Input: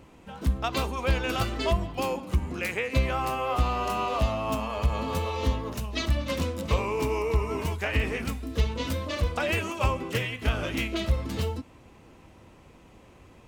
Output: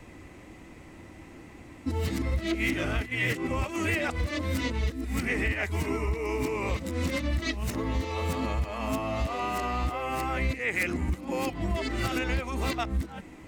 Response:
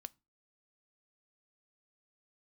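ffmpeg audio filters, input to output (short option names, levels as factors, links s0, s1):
-filter_complex "[0:a]areverse,acompressor=threshold=0.0316:ratio=6,asplit=2[s0][s1];[s1]equalizer=f=315:t=o:w=0.33:g=11,equalizer=f=500:t=o:w=0.33:g=-7,equalizer=f=1000:t=o:w=0.33:g=-7,equalizer=f=2000:t=o:w=0.33:g=12,equalizer=f=3150:t=o:w=0.33:g=-6,equalizer=f=8000:t=o:w=0.33:g=5[s2];[1:a]atrim=start_sample=2205[s3];[s2][s3]afir=irnorm=-1:irlink=0,volume=2.66[s4];[s0][s4]amix=inputs=2:normalize=0,volume=0.668"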